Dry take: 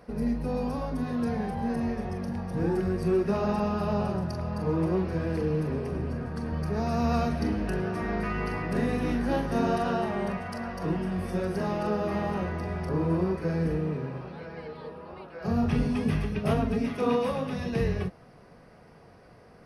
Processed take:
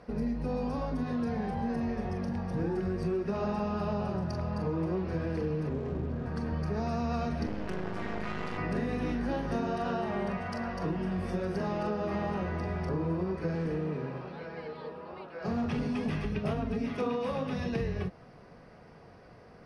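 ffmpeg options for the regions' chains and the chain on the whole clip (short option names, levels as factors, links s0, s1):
-filter_complex "[0:a]asettb=1/sr,asplit=3[s0][s1][s2];[s0]atrim=end=5.694[s3];[s1]atrim=start=5.69:end=6.26,asetpts=PTS-STARTPTS,afade=t=in:d=0.004:c=qsin,afade=t=out:st=0.566:d=0.004:c=qsin,lowpass=f=1100:p=1,aeval=exprs='sgn(val(0))*max(abs(val(0))-0.00355,0)':c=same[s4];[s2]atrim=start=6.256[s5];[s3][s4]acrossfade=d=0.004:c1=hsin:c2=qsin[s6];[s6][s5]acrossfade=d=0.004:c1=qsin:c2=hsin,asettb=1/sr,asplit=3[s7][s8][s9];[s7]atrim=end=7.464[s10];[s8]atrim=start=7.46:end=8.58,asetpts=PTS-STARTPTS,afade=t=in:d=0.004:c=qsin,afade=t=out:st=1.116:d=0.004:c=qsin,highpass=f=59:w=0.5412,highpass=f=59:w=1.3066,aeval=exprs='max(val(0),0)':c=same[s11];[s9]atrim=start=8.576[s12];[s10][s11]acrossfade=d=0.004:c1=hsin:c2=qsin[s13];[s13][s12]acrossfade=d=0.004:c1=qsin:c2=hsin,asettb=1/sr,asplit=3[s14][s15][s16];[s14]atrim=end=13.554[s17];[s15]atrim=start=13.55:end=16.25,asetpts=PTS-STARTPTS,afade=t=in:d=0.004:c=qsin,afade=t=out:st=2.696:d=0.004:c=qsin,highpass=f=160:p=1,asoftclip=type=hard:threshold=0.0631[s18];[s16]atrim=start=16.246[s19];[s17][s18]acrossfade=d=0.004:c1=hsin:c2=qsin[s20];[s20][s19]acrossfade=d=0.004:c1=qsin:c2=hsin,acompressor=threshold=0.0398:ratio=6,lowpass=6900"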